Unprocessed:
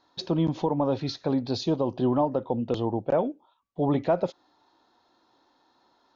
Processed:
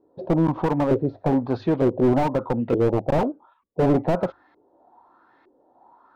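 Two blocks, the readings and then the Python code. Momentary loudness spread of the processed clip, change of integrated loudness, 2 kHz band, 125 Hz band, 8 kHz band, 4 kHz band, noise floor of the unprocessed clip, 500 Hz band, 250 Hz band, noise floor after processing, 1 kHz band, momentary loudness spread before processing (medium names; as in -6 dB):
5 LU, +4.5 dB, +8.5 dB, +5.5 dB, no reading, -8.0 dB, -67 dBFS, +4.5 dB, +5.0 dB, -62 dBFS, +4.0 dB, 5 LU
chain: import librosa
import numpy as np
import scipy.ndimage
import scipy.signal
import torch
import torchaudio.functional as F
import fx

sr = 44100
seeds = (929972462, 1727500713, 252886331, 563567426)

y = fx.hum_notches(x, sr, base_hz=50, count=2)
y = fx.filter_lfo_lowpass(y, sr, shape='saw_up', hz=1.1, low_hz=390.0, high_hz=2200.0, q=4.1)
y = fx.slew_limit(y, sr, full_power_hz=44.0)
y = F.gain(torch.from_numpy(y), 4.0).numpy()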